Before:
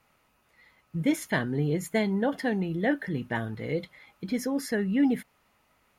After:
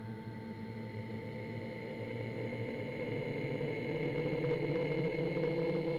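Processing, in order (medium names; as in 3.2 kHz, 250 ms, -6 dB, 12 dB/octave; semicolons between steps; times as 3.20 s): Paulstretch 24×, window 0.25 s, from 3.53 s; whistle 890 Hz -50 dBFS; Chebyshev shaper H 2 -18 dB, 4 -17 dB, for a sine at -17.5 dBFS; trim -5.5 dB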